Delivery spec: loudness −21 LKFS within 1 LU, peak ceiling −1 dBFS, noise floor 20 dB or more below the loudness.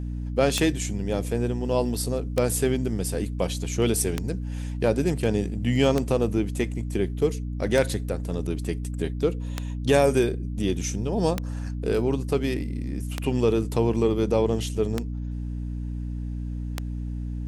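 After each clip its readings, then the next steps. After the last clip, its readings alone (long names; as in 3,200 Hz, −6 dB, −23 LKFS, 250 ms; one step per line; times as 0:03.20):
number of clicks 10; mains hum 60 Hz; hum harmonics up to 300 Hz; level of the hum −28 dBFS; integrated loudness −26.0 LKFS; sample peak −6.5 dBFS; target loudness −21.0 LKFS
→ click removal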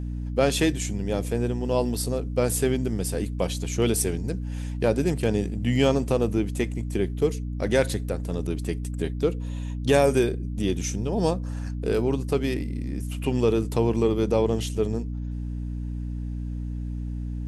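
number of clicks 0; mains hum 60 Hz; hum harmonics up to 300 Hz; level of the hum −28 dBFS
→ hum removal 60 Hz, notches 5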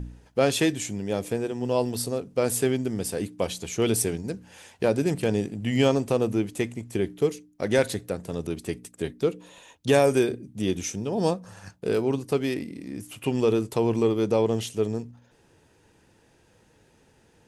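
mains hum none found; integrated loudness −26.5 LKFS; sample peak −7.5 dBFS; target loudness −21.0 LKFS
→ level +5.5 dB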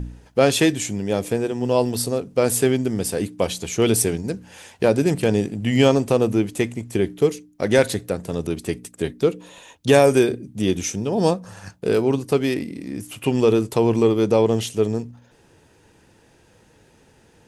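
integrated loudness −21.0 LKFS; sample peak −2.0 dBFS; background noise floor −55 dBFS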